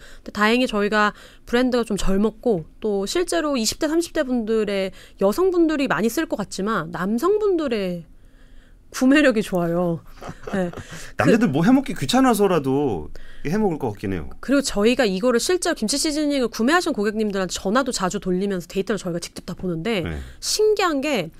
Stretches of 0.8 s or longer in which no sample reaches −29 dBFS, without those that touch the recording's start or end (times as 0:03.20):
0:08.00–0:08.95